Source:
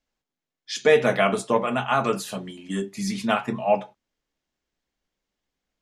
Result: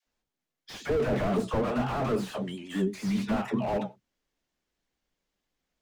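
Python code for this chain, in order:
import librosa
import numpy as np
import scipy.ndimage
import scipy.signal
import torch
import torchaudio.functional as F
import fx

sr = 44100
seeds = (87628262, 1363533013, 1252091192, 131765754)

y = fx.dispersion(x, sr, late='lows', ms=69.0, hz=440.0)
y = fx.vibrato(y, sr, rate_hz=8.7, depth_cents=77.0)
y = fx.slew_limit(y, sr, full_power_hz=29.0)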